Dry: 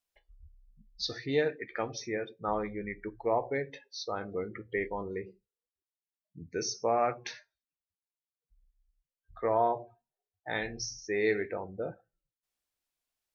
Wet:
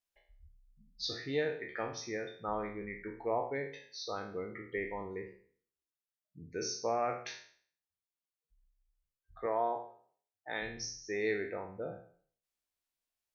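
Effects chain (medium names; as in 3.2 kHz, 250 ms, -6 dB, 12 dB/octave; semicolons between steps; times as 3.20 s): spectral sustain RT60 0.51 s; 9.46–10.62 s: Bessel high-pass 240 Hz, order 2; trim -5.5 dB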